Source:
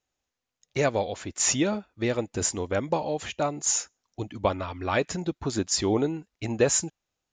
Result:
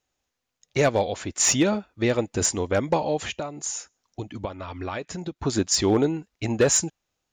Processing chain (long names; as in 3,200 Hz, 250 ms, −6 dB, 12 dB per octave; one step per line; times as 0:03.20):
0:03.32–0:05.39: downward compressor 6 to 1, threshold −33 dBFS, peak gain reduction 14 dB
hard clipping −16.5 dBFS, distortion −20 dB
level +4 dB